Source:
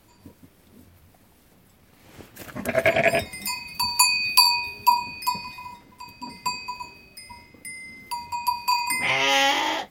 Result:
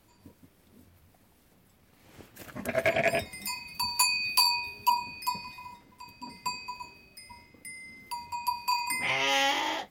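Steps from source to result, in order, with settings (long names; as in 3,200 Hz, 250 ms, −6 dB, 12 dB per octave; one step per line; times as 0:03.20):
hard clipping −10.5 dBFS, distortion −19 dB
level −6 dB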